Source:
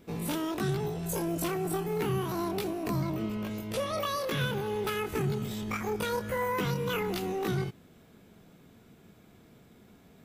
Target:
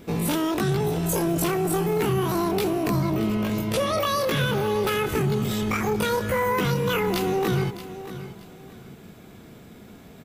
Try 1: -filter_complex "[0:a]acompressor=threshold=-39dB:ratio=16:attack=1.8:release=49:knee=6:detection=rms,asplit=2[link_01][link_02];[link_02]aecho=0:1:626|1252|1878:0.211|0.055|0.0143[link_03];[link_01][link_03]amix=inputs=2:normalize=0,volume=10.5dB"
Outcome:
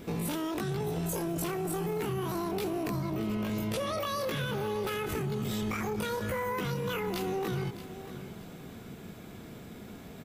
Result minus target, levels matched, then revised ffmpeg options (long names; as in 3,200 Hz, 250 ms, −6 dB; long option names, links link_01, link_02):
downward compressor: peak gain reduction +10 dB
-filter_complex "[0:a]acompressor=threshold=-28dB:ratio=16:attack=1.8:release=49:knee=6:detection=rms,asplit=2[link_01][link_02];[link_02]aecho=0:1:626|1252|1878:0.211|0.055|0.0143[link_03];[link_01][link_03]amix=inputs=2:normalize=0,volume=10.5dB"